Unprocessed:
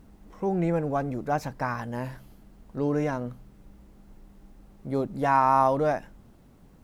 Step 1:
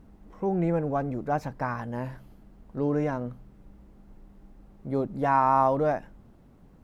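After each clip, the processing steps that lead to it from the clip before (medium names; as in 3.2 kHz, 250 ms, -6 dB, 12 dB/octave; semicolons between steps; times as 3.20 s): treble shelf 2.8 kHz -9 dB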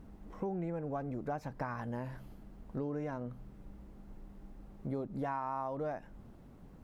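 compression 6:1, threshold -35 dBFS, peak gain reduction 16.5 dB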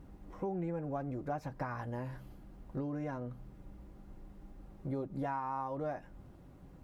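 comb of notches 220 Hz; trim +1 dB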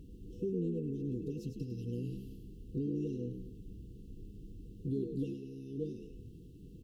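frequency-shifting echo 102 ms, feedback 37%, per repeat +65 Hz, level -7 dB; FFT band-reject 500–2600 Hz; trim +2 dB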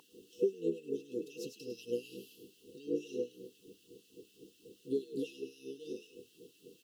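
LFO high-pass sine 4 Hz 540–1700 Hz; trim +10 dB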